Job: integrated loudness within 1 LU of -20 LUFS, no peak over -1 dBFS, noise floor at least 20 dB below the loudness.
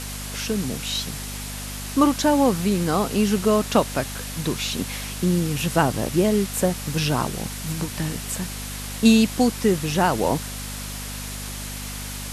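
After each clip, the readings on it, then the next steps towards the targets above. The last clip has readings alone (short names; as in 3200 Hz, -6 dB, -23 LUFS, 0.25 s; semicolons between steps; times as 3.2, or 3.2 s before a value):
hum 50 Hz; harmonics up to 250 Hz; hum level -33 dBFS; noise floor -33 dBFS; noise floor target -43 dBFS; loudness -23.0 LUFS; peak -4.0 dBFS; loudness target -20.0 LUFS
-> de-hum 50 Hz, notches 5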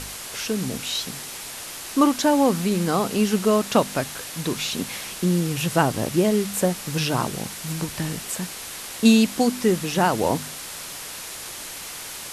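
hum none; noise floor -36 dBFS; noise floor target -44 dBFS
-> denoiser 8 dB, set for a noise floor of -36 dBFS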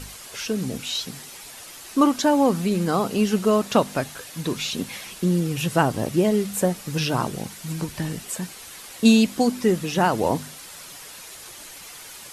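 noise floor -42 dBFS; noise floor target -43 dBFS
-> denoiser 6 dB, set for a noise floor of -42 dBFS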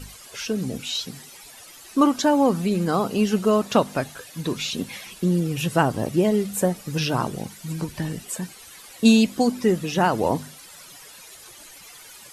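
noise floor -45 dBFS; loudness -23.0 LUFS; peak -4.5 dBFS; loudness target -20.0 LUFS
-> gain +3 dB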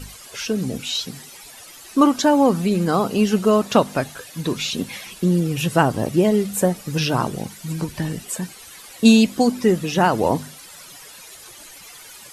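loudness -20.0 LUFS; peak -1.5 dBFS; noise floor -42 dBFS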